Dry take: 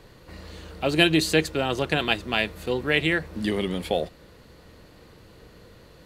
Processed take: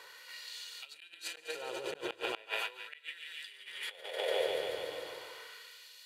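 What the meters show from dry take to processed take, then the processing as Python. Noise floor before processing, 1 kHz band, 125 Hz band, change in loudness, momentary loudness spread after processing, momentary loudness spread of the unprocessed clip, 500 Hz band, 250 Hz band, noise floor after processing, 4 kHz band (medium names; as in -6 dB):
-51 dBFS, -12.5 dB, -35.0 dB, -15.5 dB, 13 LU, 12 LU, -11.0 dB, -26.0 dB, -57 dBFS, -12.0 dB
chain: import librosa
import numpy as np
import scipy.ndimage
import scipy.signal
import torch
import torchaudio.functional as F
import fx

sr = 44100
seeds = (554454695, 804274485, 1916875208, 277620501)

p1 = x + 0.44 * np.pad(x, (int(2.1 * sr / 1000.0), 0))[:len(x)]
p2 = p1 + fx.echo_thinned(p1, sr, ms=144, feedback_pct=76, hz=300.0, wet_db=-6.0, dry=0)
p3 = fx.hpss(p2, sr, part='percussive', gain_db=-6)
p4 = fx.peak_eq(p3, sr, hz=230.0, db=-11.0, octaves=0.49)
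p5 = fx.echo_feedback(p4, sr, ms=95, feedback_pct=26, wet_db=-10.5)
p6 = fx.gate_flip(p5, sr, shuts_db=-11.0, range_db=-35)
p7 = fx.low_shelf(p6, sr, hz=330.0, db=7.0)
p8 = fx.over_compress(p7, sr, threshold_db=-34.0, ratio=-1.0)
p9 = fx.filter_lfo_highpass(p8, sr, shape='sine', hz=0.37, low_hz=330.0, high_hz=3300.0, q=0.92)
p10 = scipy.signal.sosfilt(scipy.signal.butter(2, 58.0, 'highpass', fs=sr, output='sos'), p9)
y = F.gain(torch.from_numpy(p10), -1.5).numpy()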